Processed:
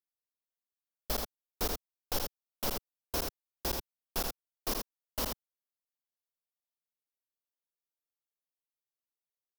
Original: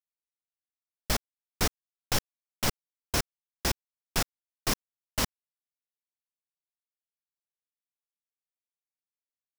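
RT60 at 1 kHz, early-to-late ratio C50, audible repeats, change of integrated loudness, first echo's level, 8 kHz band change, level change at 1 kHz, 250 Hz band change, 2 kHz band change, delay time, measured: no reverb, no reverb, 1, -5.0 dB, -4.0 dB, -7.0 dB, -4.5 dB, -6.0 dB, -9.5 dB, 80 ms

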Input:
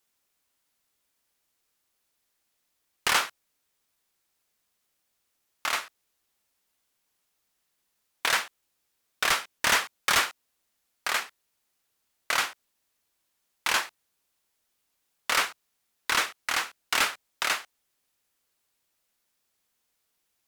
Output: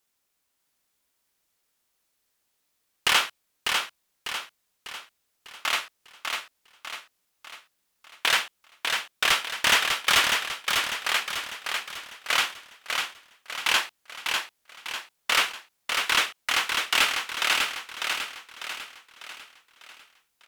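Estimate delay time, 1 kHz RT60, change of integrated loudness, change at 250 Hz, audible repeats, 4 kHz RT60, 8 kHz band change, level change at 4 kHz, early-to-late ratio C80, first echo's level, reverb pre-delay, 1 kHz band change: 598 ms, no reverb, +2.0 dB, +1.5 dB, 5, no reverb, +2.0 dB, +6.5 dB, no reverb, -4.5 dB, no reverb, +2.0 dB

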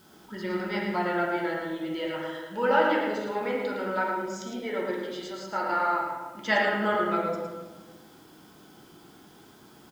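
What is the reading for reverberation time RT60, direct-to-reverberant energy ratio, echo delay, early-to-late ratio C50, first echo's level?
1.3 s, -4.5 dB, 110 ms, 0.0 dB, -5.0 dB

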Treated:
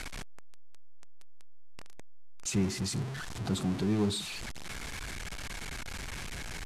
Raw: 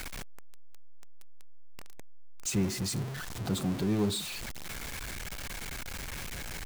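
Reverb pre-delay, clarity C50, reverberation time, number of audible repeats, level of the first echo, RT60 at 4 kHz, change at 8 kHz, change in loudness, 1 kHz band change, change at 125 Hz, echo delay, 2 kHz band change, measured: no reverb, no reverb, no reverb, no echo, no echo, no reverb, -2.0 dB, -0.5 dB, 0.0 dB, 0.0 dB, no echo, 0.0 dB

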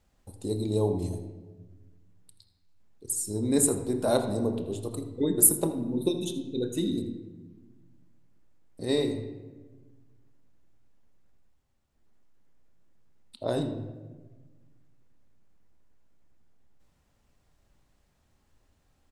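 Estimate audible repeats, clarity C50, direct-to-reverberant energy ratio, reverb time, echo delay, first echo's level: 1, 8.0 dB, 5.5 dB, 1.3 s, 81 ms, -15.5 dB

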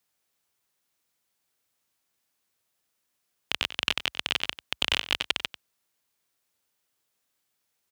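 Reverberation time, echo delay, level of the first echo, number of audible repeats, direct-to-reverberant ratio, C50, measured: no reverb, 94 ms, -14.0 dB, 1, no reverb, no reverb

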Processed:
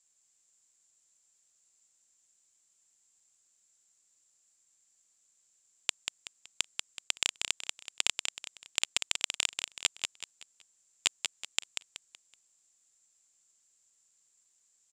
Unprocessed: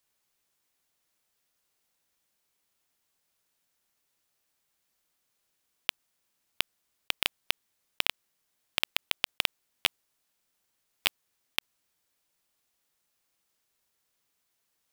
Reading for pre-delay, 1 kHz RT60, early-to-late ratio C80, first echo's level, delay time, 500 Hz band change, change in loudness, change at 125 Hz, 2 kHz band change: no reverb, no reverb, no reverb, -6.0 dB, 188 ms, -5.0 dB, -1.0 dB, -5.5 dB, -3.0 dB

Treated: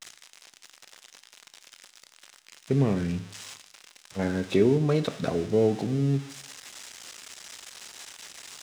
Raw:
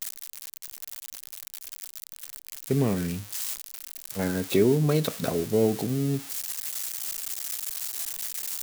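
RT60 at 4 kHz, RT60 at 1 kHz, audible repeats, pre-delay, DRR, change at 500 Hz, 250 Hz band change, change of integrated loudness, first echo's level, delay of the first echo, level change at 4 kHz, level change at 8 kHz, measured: 0.70 s, 0.75 s, no echo, 8 ms, 11.5 dB, 0.0 dB, 0.0 dB, +2.5 dB, no echo, no echo, -3.5 dB, -10.0 dB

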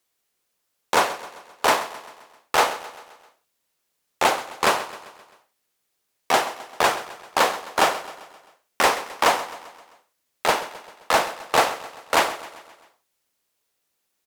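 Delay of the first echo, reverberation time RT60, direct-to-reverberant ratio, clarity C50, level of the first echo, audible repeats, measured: 131 ms, no reverb, no reverb, no reverb, -15.5 dB, 4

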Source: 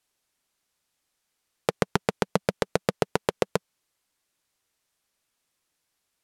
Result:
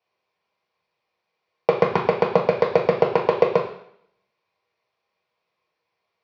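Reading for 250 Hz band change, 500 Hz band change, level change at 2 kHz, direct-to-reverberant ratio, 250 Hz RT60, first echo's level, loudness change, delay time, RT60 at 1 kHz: +2.0 dB, +9.5 dB, +3.0 dB, -1.0 dB, 0.65 s, no echo, +7.5 dB, no echo, 0.70 s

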